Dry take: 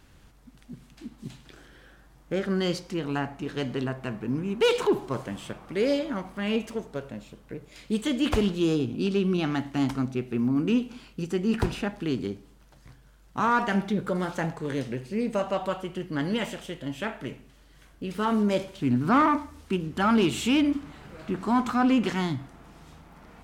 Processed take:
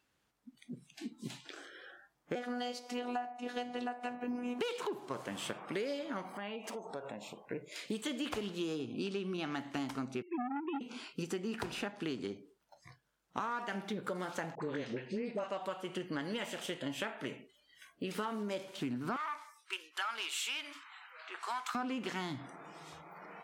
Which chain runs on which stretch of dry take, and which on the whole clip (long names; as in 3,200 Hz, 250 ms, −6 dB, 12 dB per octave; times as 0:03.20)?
0:02.35–0:04.59: parametric band 720 Hz +13.5 dB 0.36 octaves + phases set to zero 245 Hz
0:06.33–0:07.46: downward compressor, threshold −41 dBFS + parametric band 790 Hz +9 dB 0.75 octaves
0:10.22–0:10.81: three sine waves on the formant tracks + saturating transformer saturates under 680 Hz
0:14.55–0:15.49: high-frequency loss of the air 98 metres + all-pass dispersion highs, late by 52 ms, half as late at 790 Hz
0:19.16–0:21.75: high-pass filter 1,300 Hz + one half of a high-frequency compander decoder only
whole clip: noise reduction from a noise print of the clip's start 20 dB; high-pass filter 410 Hz 6 dB per octave; downward compressor 12 to 1, threshold −38 dBFS; level +3.5 dB